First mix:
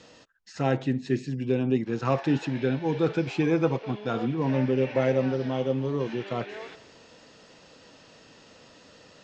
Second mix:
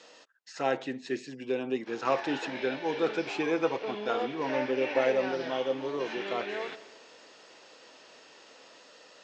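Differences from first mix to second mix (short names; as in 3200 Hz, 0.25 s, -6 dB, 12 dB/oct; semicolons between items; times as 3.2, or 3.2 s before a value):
speech: add HPF 440 Hz 12 dB/oct; background +4.5 dB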